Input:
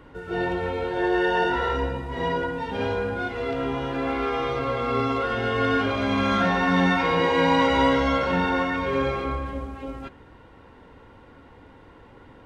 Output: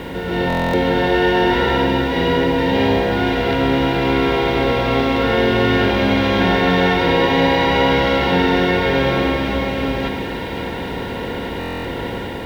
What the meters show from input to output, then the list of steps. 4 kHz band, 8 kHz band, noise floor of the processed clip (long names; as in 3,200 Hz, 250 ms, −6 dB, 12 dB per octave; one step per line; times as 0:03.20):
+10.5 dB, can't be measured, −26 dBFS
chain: compressor on every frequency bin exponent 0.4
low-pass filter 5,400 Hz 24 dB per octave
parametric band 1,200 Hz −11.5 dB 0.56 octaves
automatic gain control gain up to 3.5 dB
bit reduction 8 bits
echo with a time of its own for lows and highs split 1,700 Hz, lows 97 ms, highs 525 ms, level −6.5 dB
buffer that repeats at 0:00.48/0:11.59, samples 1,024, times 10